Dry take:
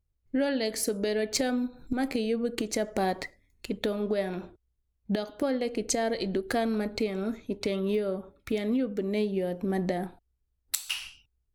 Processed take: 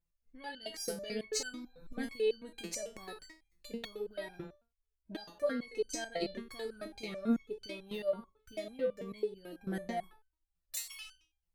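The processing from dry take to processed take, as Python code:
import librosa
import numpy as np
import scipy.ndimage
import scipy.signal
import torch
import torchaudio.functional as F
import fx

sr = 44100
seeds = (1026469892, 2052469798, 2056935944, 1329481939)

y = fx.resonator_held(x, sr, hz=9.1, low_hz=170.0, high_hz=1500.0)
y = y * 10.0 ** (8.5 / 20.0)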